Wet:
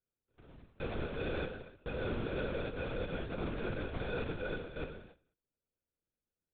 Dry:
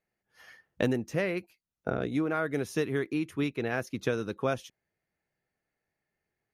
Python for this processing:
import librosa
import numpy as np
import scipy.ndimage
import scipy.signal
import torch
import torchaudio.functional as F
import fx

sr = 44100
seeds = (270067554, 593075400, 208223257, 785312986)

y = fx.reverse_delay(x, sr, ms=186, wet_db=-9.5)
y = fx.hum_notches(y, sr, base_hz=50, count=8)
y = fx.level_steps(y, sr, step_db=20)
y = fx.sample_hold(y, sr, seeds[0], rate_hz=1000.0, jitter_pct=0)
y = fx.rev_gated(y, sr, seeds[1], gate_ms=330, shape='falling', drr_db=1.0)
y = fx.lpc_vocoder(y, sr, seeds[2], excitation='whisper', order=8)
y = y * 10.0 ** (1.0 / 20.0)